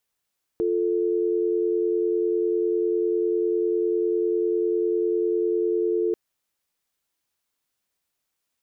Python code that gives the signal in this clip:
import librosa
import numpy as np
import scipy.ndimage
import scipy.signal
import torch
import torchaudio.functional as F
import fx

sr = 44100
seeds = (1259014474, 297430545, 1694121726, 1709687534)

y = fx.call_progress(sr, length_s=5.54, kind='dial tone', level_db=-23.0)